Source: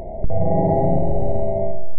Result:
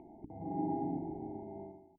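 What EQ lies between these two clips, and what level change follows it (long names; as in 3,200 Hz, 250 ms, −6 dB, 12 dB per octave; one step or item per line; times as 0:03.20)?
formant filter u
high-frequency loss of the air 460 metres
−3.0 dB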